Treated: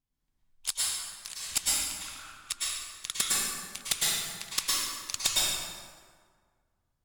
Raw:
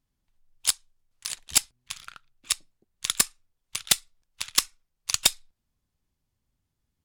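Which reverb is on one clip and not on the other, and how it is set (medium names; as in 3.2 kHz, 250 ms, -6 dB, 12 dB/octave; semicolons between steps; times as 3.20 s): plate-style reverb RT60 1.8 s, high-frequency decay 0.6×, pre-delay 95 ms, DRR -7.5 dB; trim -9 dB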